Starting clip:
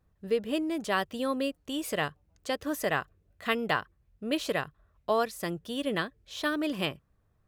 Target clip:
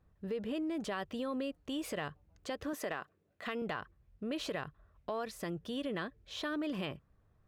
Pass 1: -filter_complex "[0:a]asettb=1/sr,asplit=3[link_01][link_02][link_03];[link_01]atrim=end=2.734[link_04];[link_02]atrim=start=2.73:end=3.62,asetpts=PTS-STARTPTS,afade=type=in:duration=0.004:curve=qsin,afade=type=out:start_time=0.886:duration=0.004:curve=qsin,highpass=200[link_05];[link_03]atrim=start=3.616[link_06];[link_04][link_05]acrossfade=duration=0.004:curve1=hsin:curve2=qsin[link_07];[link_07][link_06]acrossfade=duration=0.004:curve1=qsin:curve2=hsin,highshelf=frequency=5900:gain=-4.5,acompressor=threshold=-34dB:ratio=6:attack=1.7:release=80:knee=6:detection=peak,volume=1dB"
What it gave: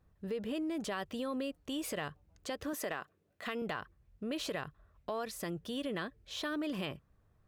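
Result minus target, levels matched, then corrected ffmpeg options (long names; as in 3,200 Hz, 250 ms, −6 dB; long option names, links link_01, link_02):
8,000 Hz band +4.0 dB
-filter_complex "[0:a]asettb=1/sr,asplit=3[link_01][link_02][link_03];[link_01]atrim=end=2.734[link_04];[link_02]atrim=start=2.73:end=3.62,asetpts=PTS-STARTPTS,afade=type=in:duration=0.004:curve=qsin,afade=type=out:start_time=0.886:duration=0.004:curve=qsin,highpass=200[link_05];[link_03]atrim=start=3.616[link_06];[link_04][link_05]acrossfade=duration=0.004:curve1=hsin:curve2=qsin[link_07];[link_07][link_06]acrossfade=duration=0.004:curve1=qsin:curve2=hsin,highshelf=frequency=5900:gain=-12.5,acompressor=threshold=-34dB:ratio=6:attack=1.7:release=80:knee=6:detection=peak,volume=1dB"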